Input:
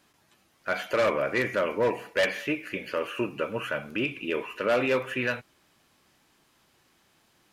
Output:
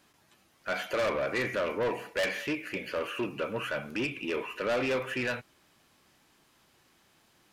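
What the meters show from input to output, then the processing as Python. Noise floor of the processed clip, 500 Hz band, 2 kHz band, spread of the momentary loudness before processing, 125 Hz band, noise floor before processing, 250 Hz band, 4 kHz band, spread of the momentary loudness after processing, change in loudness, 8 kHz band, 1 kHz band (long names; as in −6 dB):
−66 dBFS, −4.0 dB, −3.5 dB, 7 LU, −3.0 dB, −66 dBFS, −3.0 dB, −2.0 dB, 5 LU, −3.5 dB, 0.0 dB, −4.0 dB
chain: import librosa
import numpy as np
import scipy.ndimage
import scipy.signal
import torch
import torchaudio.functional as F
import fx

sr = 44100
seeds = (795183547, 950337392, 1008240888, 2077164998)

y = 10.0 ** (-25.0 / 20.0) * np.tanh(x / 10.0 ** (-25.0 / 20.0))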